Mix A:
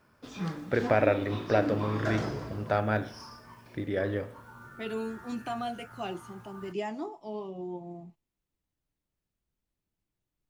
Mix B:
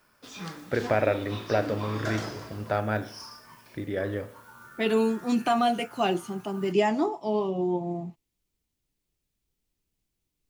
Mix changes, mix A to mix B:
second voice +11.0 dB; background: add tilt EQ +2.5 dB/octave

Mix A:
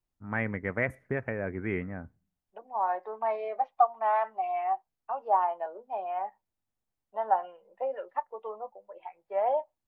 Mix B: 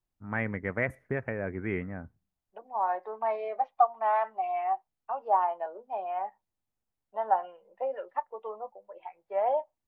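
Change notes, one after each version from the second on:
first voice: send -7.0 dB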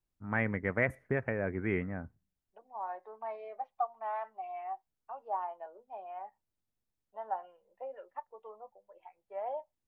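second voice -10.5 dB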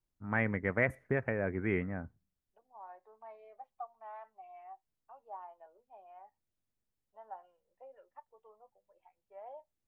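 second voice -11.0 dB

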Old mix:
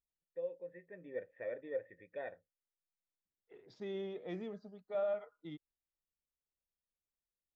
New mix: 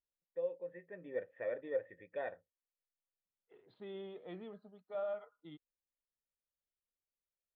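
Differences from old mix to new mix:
first voice +7.0 dB; master: add rippled Chebyshev low-pass 4.3 kHz, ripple 6 dB

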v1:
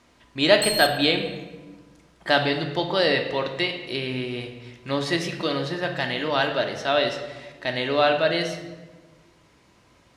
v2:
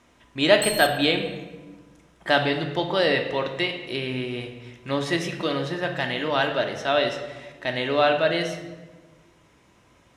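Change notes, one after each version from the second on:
master: add peaking EQ 4.5 kHz -8.5 dB 0.26 oct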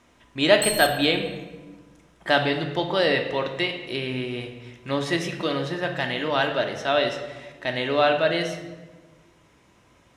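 background: send +6.5 dB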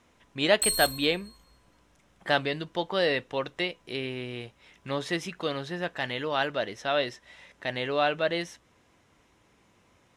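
speech: send off

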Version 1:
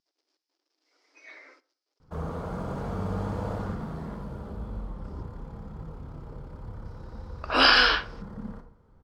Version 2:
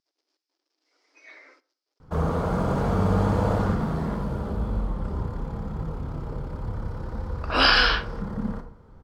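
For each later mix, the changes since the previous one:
background +9.0 dB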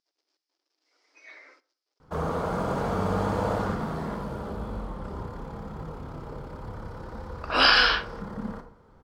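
master: add bass shelf 210 Hz -10 dB

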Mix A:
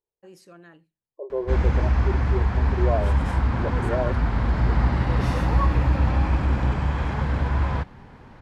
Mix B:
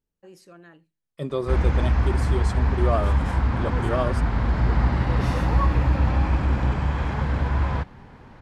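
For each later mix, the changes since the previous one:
second voice: remove brick-wall FIR band-pass 330–1100 Hz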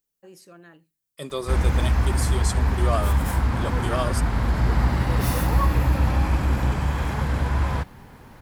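second voice: add tilt EQ +3 dB/octave; background: remove distance through air 72 m; master: add treble shelf 7.7 kHz +9.5 dB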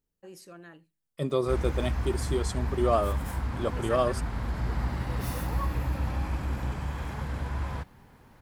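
second voice: add tilt EQ -3 dB/octave; background -9.5 dB

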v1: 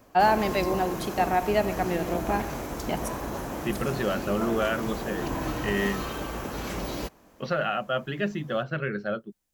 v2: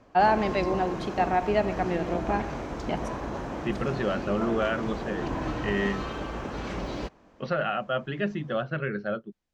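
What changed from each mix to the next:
master: add distance through air 130 m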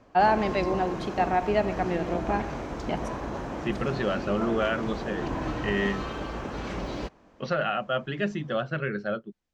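second voice: remove distance through air 130 m

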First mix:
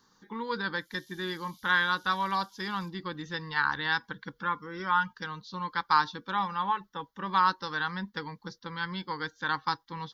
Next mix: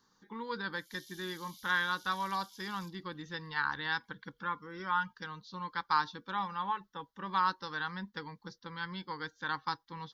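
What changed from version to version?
speech -5.5 dB; background +4.0 dB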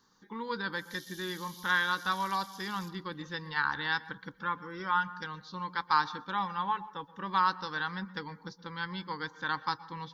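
speech: send on; background +4.5 dB

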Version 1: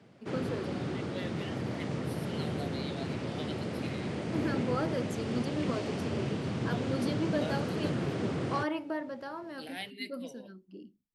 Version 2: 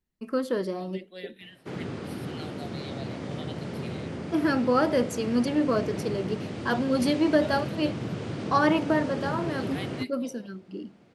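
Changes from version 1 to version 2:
first voice +10.5 dB; background: entry +1.40 s

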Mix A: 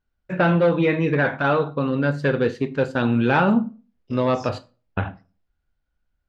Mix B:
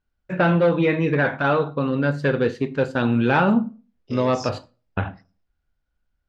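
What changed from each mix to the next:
second voice +8.5 dB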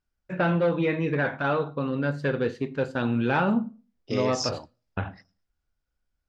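first voice -5.5 dB; second voice +6.5 dB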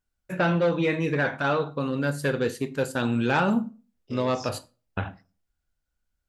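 first voice: remove distance through air 200 m; second voice -11.5 dB

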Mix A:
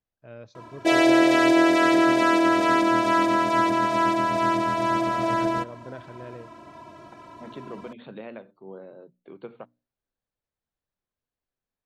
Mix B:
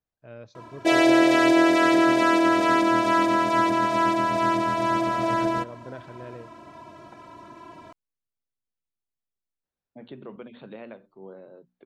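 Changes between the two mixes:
second voice: entry +2.55 s; reverb: off

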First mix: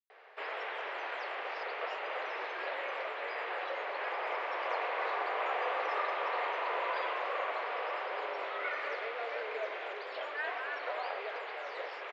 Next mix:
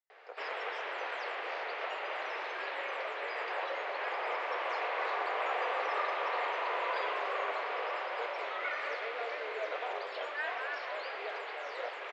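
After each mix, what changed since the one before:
speech: entry -1.15 s; master: remove distance through air 73 m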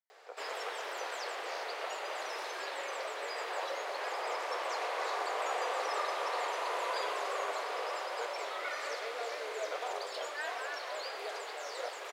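background: remove resonant low-pass 2.5 kHz, resonance Q 1.5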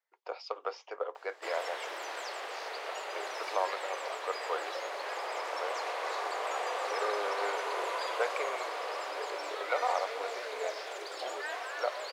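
speech +10.0 dB; background: entry +1.05 s

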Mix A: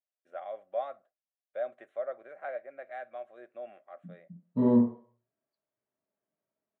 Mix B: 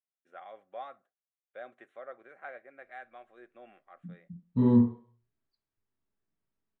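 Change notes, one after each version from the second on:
second voice: remove band-pass 180–2600 Hz; master: add peaking EQ 610 Hz -14 dB 0.4 oct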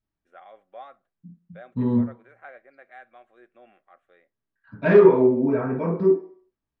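second voice: entry -2.80 s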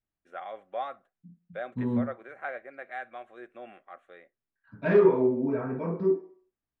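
first voice +8.0 dB; second voice -6.5 dB

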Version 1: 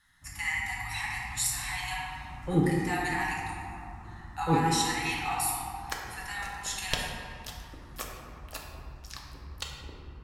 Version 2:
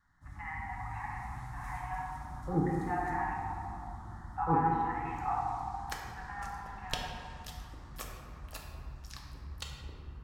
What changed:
speech: add low-pass 1.4 kHz 24 dB/octave; second sound -5.5 dB

